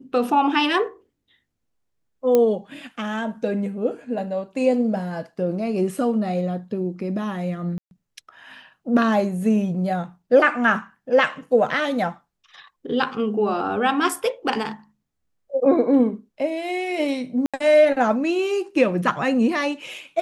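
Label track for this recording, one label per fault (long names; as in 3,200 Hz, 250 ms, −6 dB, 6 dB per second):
2.350000	2.350000	click −7 dBFS
7.780000	7.910000	drop-out 131 ms
17.460000	17.540000	drop-out 76 ms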